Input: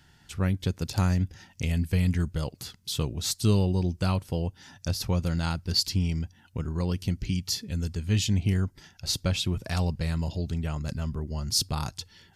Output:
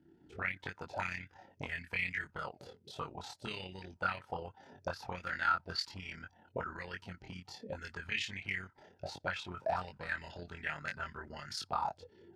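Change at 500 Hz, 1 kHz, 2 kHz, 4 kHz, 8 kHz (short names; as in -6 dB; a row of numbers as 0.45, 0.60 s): -8.0, +1.0, +3.5, -13.0, -20.5 dB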